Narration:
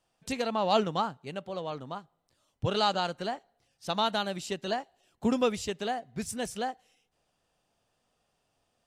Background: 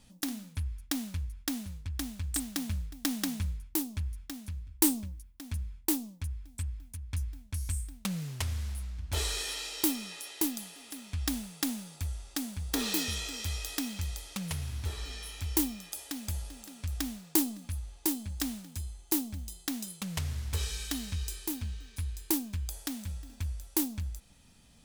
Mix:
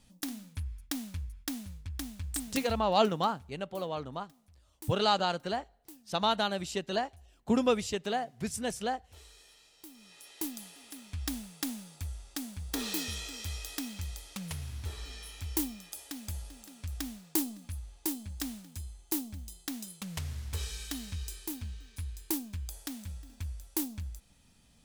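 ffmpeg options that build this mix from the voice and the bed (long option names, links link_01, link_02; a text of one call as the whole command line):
ffmpeg -i stem1.wav -i stem2.wav -filter_complex "[0:a]adelay=2250,volume=0dB[link_01];[1:a]volume=16.5dB,afade=type=out:start_time=2.59:duration=0.47:silence=0.1,afade=type=in:start_time=9.9:duration=0.78:silence=0.105925[link_02];[link_01][link_02]amix=inputs=2:normalize=0" out.wav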